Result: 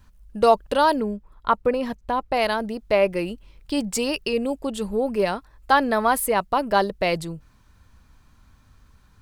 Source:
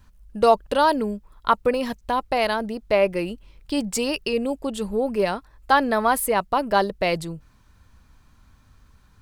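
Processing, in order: 1–2.34 high shelf 2800 Hz -9 dB

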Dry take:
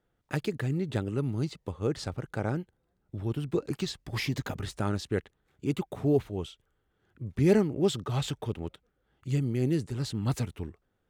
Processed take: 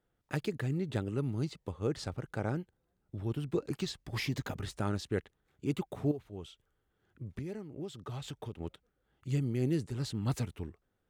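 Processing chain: 6.11–8.6 compressor 12:1, threshold -34 dBFS, peak gain reduction 17.5 dB; gain -3.5 dB

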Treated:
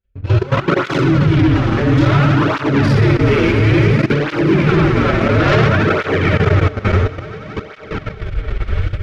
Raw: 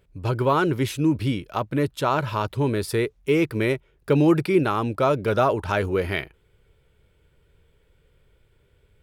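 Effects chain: recorder AGC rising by 9.7 dB/s; shoebox room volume 150 m³, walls hard, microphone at 1.1 m; chopper 0.73 Hz, depth 60%, duty 15%; notches 60/120/180/240/300 Hz; on a send: swelling echo 93 ms, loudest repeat 8, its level -18 dB; on the sum: sample leveller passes 5; tilt -4 dB/oct; level quantiser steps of 17 dB; band shelf 3000 Hz +13.5 dB 2.6 oct; tape flanging out of phase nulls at 0.58 Hz, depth 7.1 ms; gain -9.5 dB

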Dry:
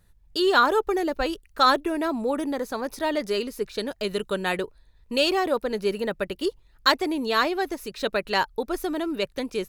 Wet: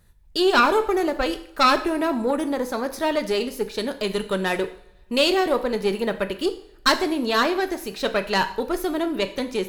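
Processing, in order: one diode to ground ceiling -19 dBFS; two-slope reverb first 0.57 s, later 2.1 s, from -25 dB, DRR 8 dB; gain +3.5 dB

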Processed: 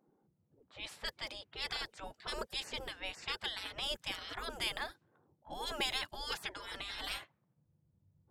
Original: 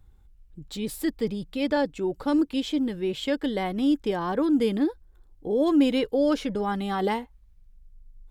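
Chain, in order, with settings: low-pass opened by the level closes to 580 Hz, open at -22 dBFS; spectral gate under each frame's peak -25 dB weak; gain +4 dB

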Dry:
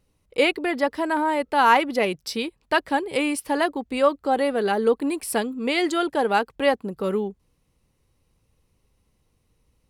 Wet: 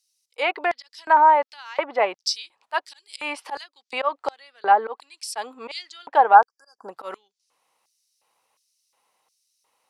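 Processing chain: auto swell 0.16 s; treble ducked by the level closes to 1700 Hz, closed at -19.5 dBFS; spectral delete 6.35–6.89, 1700–4600 Hz; LFO high-pass square 1.4 Hz 830–5200 Hz; gain +4 dB

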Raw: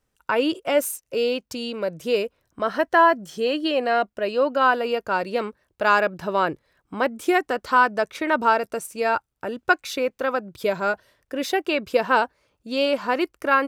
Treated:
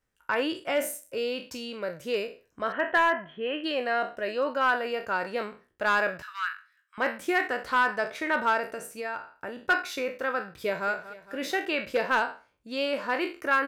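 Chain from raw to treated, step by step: spectral trails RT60 0.34 s; 2.72–3.64 elliptic low-pass 3200 Hz, stop band 40 dB; hard clip -11 dBFS, distortion -19 dB; 6.22–6.98 steep high-pass 1200 Hz 48 dB/oct; 8.67–9.61 compressor 3:1, threshold -26 dBFS, peak gain reduction 7.5 dB; bell 1800 Hz +6.5 dB 0.78 oct; 10.47–10.9 echo throw 0.23 s, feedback 60%, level -15 dB; gain -8 dB

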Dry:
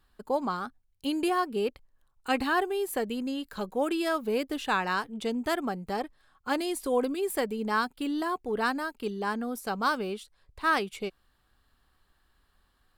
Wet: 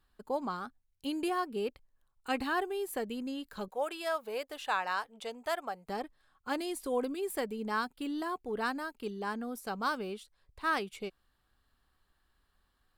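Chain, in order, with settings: 3.68–5.89 resonant low shelf 420 Hz -11.5 dB, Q 1.5; gain -5.5 dB

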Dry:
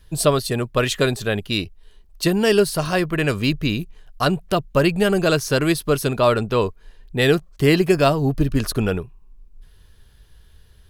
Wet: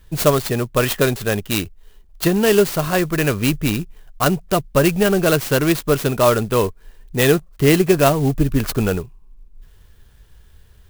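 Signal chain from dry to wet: clock jitter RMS 0.045 ms; gain +2 dB

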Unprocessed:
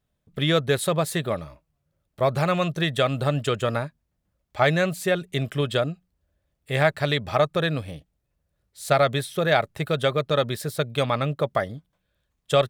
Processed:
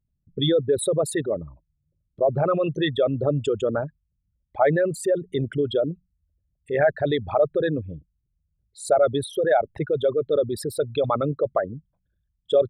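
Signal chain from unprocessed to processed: formant sharpening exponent 3; gain +1 dB

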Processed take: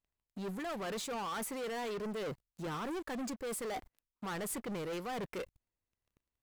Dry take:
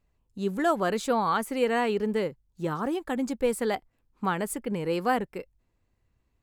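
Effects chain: low shelf 380 Hz -6.5 dB; reverse; compressor 12:1, threshold -40 dBFS, peak gain reduction 19.5 dB; reverse; sample leveller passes 5; gain -5.5 dB

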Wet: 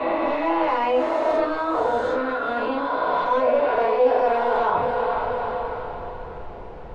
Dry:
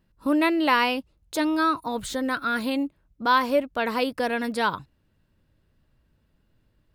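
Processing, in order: spectral swells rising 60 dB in 2.38 s; HPF 63 Hz; on a send: diffused feedback echo 0.457 s, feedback 42%, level -14.5 dB; on the sum: overloaded stage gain 15 dB; shoebox room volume 140 m³, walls furnished, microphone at 4.9 m; added noise brown -34 dBFS; tilt shelf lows -4 dB, about 1400 Hz; reverse; compressor 5:1, threshold -27 dBFS, peak gain reduction 19.5 dB; reverse; LPF 2100 Hz 12 dB/oct; band shelf 590 Hz +10.5 dB

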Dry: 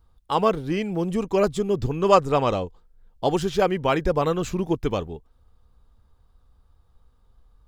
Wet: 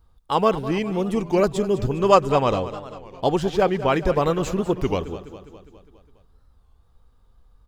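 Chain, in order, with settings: 3.29–3.94 high shelf 4200 Hz -6.5 dB; on a send: feedback echo 0.204 s, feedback 58%, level -14 dB; on the sum: record warp 33 1/3 rpm, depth 160 cents; gain +1.5 dB

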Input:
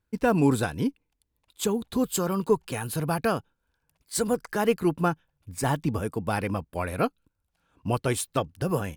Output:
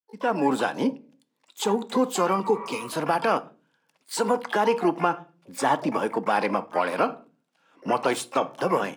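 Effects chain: opening faded in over 0.78 s; in parallel at -2 dB: compressor 8:1, threshold -36 dBFS, peak gain reduction 19.5 dB; on the sum: Bessel high-pass 290 Hz, order 6; spectral repair 2.47–2.88, 500–2100 Hz before; on a send at -14 dB: reverb RT60 0.40 s, pre-delay 4 ms; on the sum: limiter -17.5 dBFS, peak gain reduction 6.5 dB; air absorption 65 m; harmoniser +12 st -12 dB; dynamic EQ 890 Hz, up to +6 dB, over -44 dBFS, Q 1.4; gain +3.5 dB

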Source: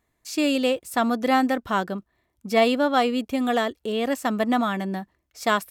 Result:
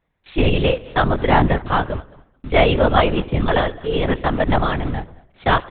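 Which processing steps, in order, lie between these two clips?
in parallel at -3.5 dB: requantised 6-bit, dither none; on the sum: feedback echo 0.214 s, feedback 17%, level -22 dB; reverb RT60 0.95 s, pre-delay 7 ms, DRR 15 dB; LPC vocoder at 8 kHz whisper; gain +1 dB

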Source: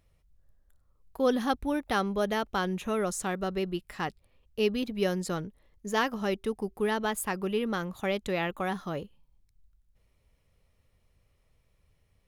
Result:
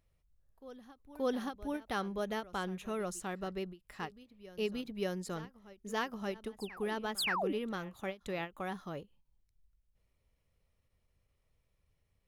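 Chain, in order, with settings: painted sound fall, 7.18–7.53, 250–5400 Hz -26 dBFS; reverse echo 0.577 s -17 dB; ending taper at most 290 dB/s; gain -8 dB

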